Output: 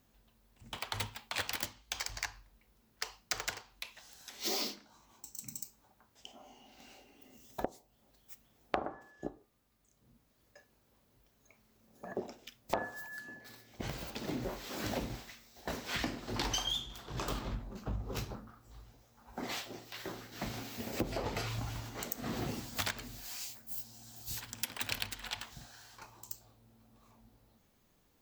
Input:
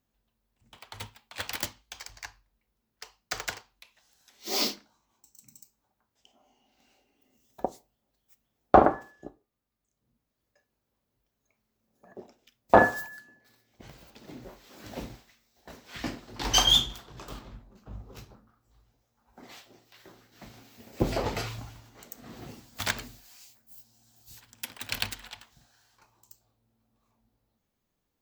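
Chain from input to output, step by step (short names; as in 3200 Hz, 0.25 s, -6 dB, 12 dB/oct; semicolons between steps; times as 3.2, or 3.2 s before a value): compressor 12:1, threshold -43 dBFS, peak gain reduction 31 dB; gain +10 dB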